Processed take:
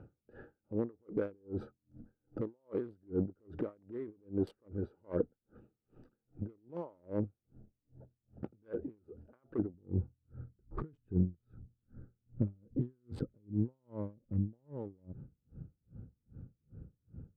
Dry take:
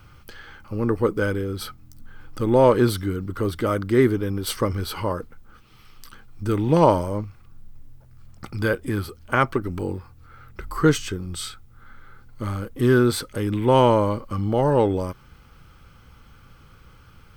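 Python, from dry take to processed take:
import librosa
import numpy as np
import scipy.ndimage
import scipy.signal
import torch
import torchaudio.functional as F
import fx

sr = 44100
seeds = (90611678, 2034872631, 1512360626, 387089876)

y = fx.wiener(x, sr, points=41)
y = fx.over_compress(y, sr, threshold_db=-30.0, ratio=-1.0)
y = 10.0 ** (-17.5 / 20.0) * np.tanh(y / 10.0 ** (-17.5 / 20.0))
y = fx.bandpass_q(y, sr, hz=fx.steps((0.0, 460.0), (9.74, 170.0)), q=0.78)
y = y * 10.0 ** (-38 * (0.5 - 0.5 * np.cos(2.0 * np.pi * 2.5 * np.arange(len(y)) / sr)) / 20.0)
y = y * librosa.db_to_amplitude(2.5)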